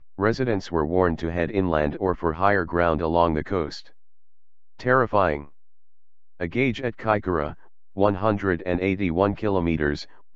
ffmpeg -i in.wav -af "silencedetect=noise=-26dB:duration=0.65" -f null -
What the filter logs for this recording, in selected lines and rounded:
silence_start: 3.77
silence_end: 4.85 | silence_duration: 1.09
silence_start: 5.41
silence_end: 6.41 | silence_duration: 1.01